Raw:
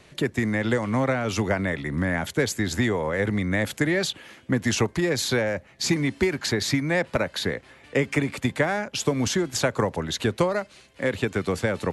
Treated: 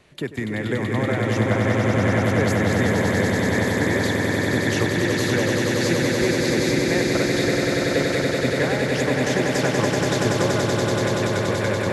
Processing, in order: peaking EQ 6.5 kHz -3 dB 1.6 oct; echo with a slow build-up 95 ms, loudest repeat 8, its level -4.5 dB; trim -3 dB

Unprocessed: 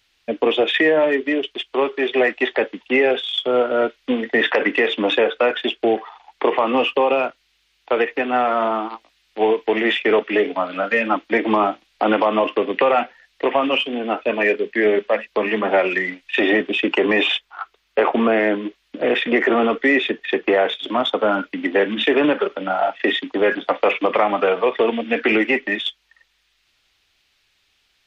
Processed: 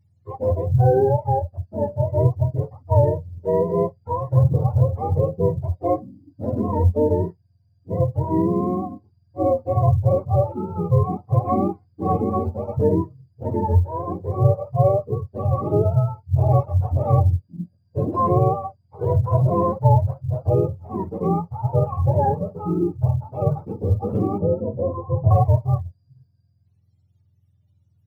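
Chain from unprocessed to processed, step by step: spectrum inverted on a logarithmic axis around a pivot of 490 Hz; harmonic-percussive split percussive -12 dB; short-mantissa float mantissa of 6-bit; 24.38–25.31 s: Chebyshev low-pass 640 Hz, order 2

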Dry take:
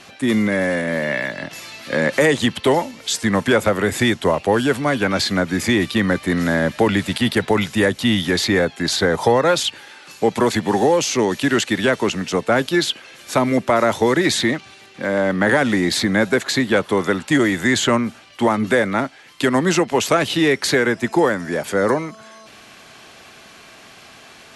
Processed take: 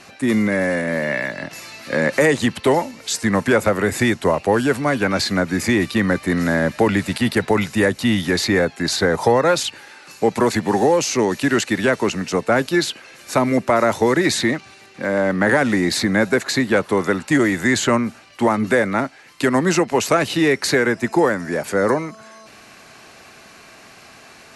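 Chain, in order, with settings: peaking EQ 3.3 kHz -8.5 dB 0.25 oct

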